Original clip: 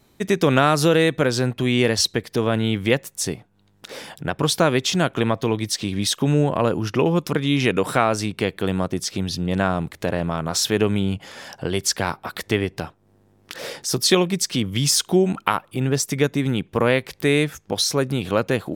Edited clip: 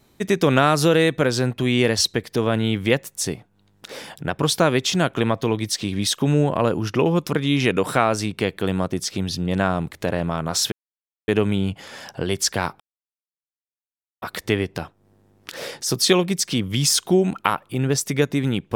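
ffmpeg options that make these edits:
-filter_complex "[0:a]asplit=3[a][b][c];[a]atrim=end=10.72,asetpts=PTS-STARTPTS,afade=t=out:st=10.716:d=0.004:c=hsin,apad=pad_dur=0.56[d];[b]atrim=start=10.72:end=12.24,asetpts=PTS-STARTPTS,afade=t=in:d=0.004:c=hsin,afade=t=out:st=1.516:d=0.004:c=hsin,apad=pad_dur=1.42[e];[c]atrim=start=12.24,asetpts=PTS-STARTPTS,afade=t=in:d=0.004:c=hsin[f];[d][e][f]concat=n=3:v=0:a=1"

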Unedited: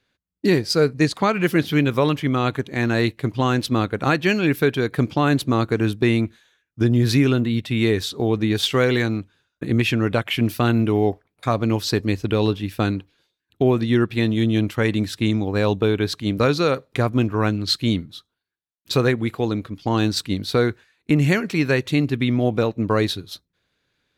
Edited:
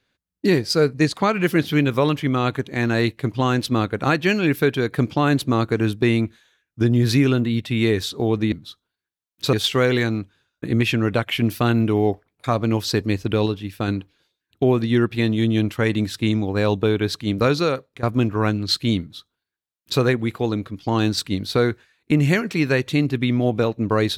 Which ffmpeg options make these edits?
-filter_complex "[0:a]asplit=6[a][b][c][d][e][f];[a]atrim=end=8.522[g];[b]atrim=start=17.988:end=19.002[h];[c]atrim=start=8.518:end=12.452[i];[d]atrim=start=12.448:end=12.872,asetpts=PTS-STARTPTS,volume=-3.5dB[j];[e]atrim=start=12.868:end=17.02,asetpts=PTS-STARTPTS,afade=t=out:st=3.732:d=0.42:silence=0.112202[k];[f]atrim=start=17.02,asetpts=PTS-STARTPTS,afade=t=in:d=0.004:c=hsin:silence=0.112202[l];[g][h]acrossfade=d=0.004:c1=hsin:c2=hsin[m];[m][i]acrossfade=d=0.004:c1=hsin:c2=hsin[n];[n][j]acrossfade=d=0.004:c1=hsin:c2=hsin[o];[k][l]concat=n=2:v=0:a=1[p];[o][p]acrossfade=d=0.004:c1=hsin:c2=hsin"

